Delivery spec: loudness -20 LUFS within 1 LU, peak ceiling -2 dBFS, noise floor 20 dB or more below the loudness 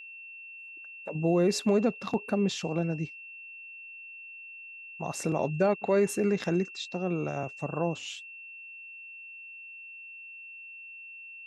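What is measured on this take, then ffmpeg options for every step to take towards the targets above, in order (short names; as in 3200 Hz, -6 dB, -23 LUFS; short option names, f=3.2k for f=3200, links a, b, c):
steady tone 2700 Hz; tone level -43 dBFS; loudness -29.5 LUFS; peak -14.0 dBFS; loudness target -20.0 LUFS
-> -af "bandreject=f=2.7k:w=30"
-af "volume=9.5dB"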